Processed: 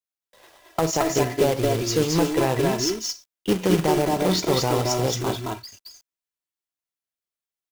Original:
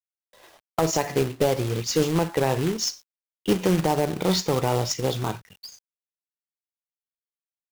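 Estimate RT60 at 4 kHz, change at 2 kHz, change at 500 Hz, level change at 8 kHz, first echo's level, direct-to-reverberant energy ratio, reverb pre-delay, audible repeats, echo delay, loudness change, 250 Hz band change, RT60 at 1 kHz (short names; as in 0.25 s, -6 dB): none, +2.5 dB, +2.5 dB, +2.0 dB, -1.0 dB, none, none, 1, 0.22 s, +1.5 dB, +2.5 dB, none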